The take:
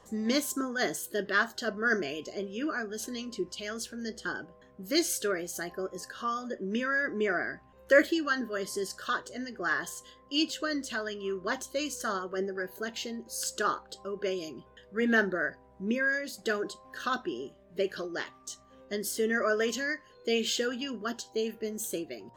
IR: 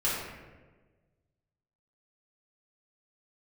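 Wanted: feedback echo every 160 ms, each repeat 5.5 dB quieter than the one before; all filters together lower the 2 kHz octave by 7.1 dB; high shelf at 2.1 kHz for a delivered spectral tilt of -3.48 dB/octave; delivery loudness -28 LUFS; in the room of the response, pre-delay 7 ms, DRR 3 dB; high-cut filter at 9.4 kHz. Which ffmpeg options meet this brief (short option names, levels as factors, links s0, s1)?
-filter_complex "[0:a]lowpass=9400,equalizer=f=2000:t=o:g=-6,highshelf=f=2100:g=-7,aecho=1:1:160|320|480|640|800|960|1120:0.531|0.281|0.149|0.079|0.0419|0.0222|0.0118,asplit=2[s0][s1];[1:a]atrim=start_sample=2205,adelay=7[s2];[s1][s2]afir=irnorm=-1:irlink=0,volume=0.237[s3];[s0][s3]amix=inputs=2:normalize=0,volume=1.41"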